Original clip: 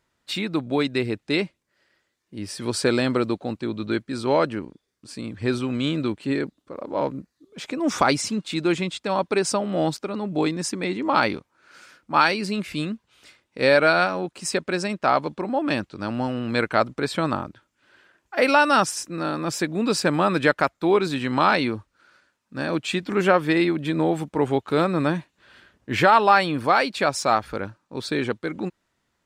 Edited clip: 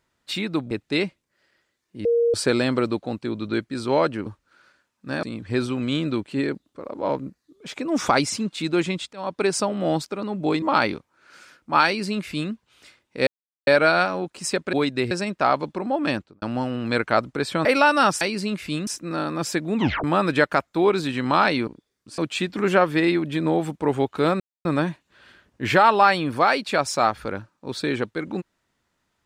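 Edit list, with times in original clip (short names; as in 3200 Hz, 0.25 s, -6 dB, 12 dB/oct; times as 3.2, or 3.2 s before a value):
0.71–1.09 move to 14.74
2.43–2.72 bleep 469 Hz -16 dBFS
4.64–5.15 swap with 21.74–22.71
9.05–9.35 fade in, from -19 dB
10.54–11.03 cut
12.27–12.93 copy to 18.94
13.68 insert silence 0.40 s
15.76–16.05 studio fade out
17.28–18.38 cut
19.83 tape stop 0.28 s
24.93 insert silence 0.25 s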